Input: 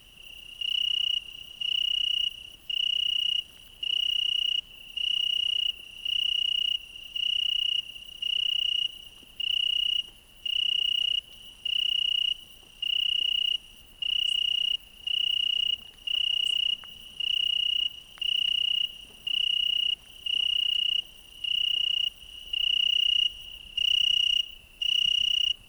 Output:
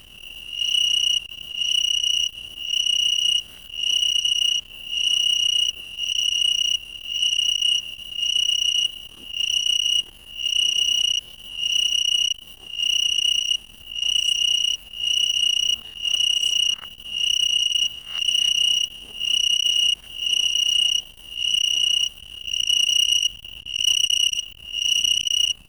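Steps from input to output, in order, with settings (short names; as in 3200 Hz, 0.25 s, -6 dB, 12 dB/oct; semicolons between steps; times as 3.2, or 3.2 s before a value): spectral swells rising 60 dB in 0.53 s; core saturation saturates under 3400 Hz; gain +7 dB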